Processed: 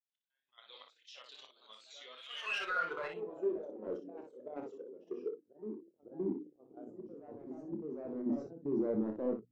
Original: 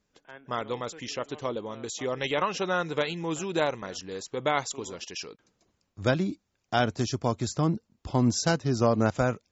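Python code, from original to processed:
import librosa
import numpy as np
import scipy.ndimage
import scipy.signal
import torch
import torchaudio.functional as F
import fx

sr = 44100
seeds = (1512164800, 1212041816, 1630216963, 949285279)

p1 = scipy.signal.sosfilt(scipy.signal.butter(2, 130.0, 'highpass', fs=sr, output='sos'), x)
p2 = fx.hum_notches(p1, sr, base_hz=60, count=5)
p3 = fx.over_compress(p2, sr, threshold_db=-30.0, ratio=-0.5)
p4 = p2 + (p3 * librosa.db_to_amplitude(2.0))
p5 = fx.filter_sweep_bandpass(p4, sr, from_hz=3500.0, to_hz=360.0, start_s=2.3, end_s=3.71, q=2.0)
p6 = fx.auto_swell(p5, sr, attack_ms=340.0)
p7 = fx.level_steps(p6, sr, step_db=12)
p8 = np.clip(10.0 ** (34.0 / 20.0) * p7, -1.0, 1.0) / 10.0 ** (34.0 / 20.0)
p9 = fx.echo_pitch(p8, sr, ms=108, semitones=2, count=2, db_per_echo=-6.0)
p10 = p9 + fx.room_early_taps(p9, sr, ms=(28, 60), db=(-8.0, -5.0), dry=0)
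p11 = fx.spectral_expand(p10, sr, expansion=1.5)
y = p11 * librosa.db_to_amplitude(2.0)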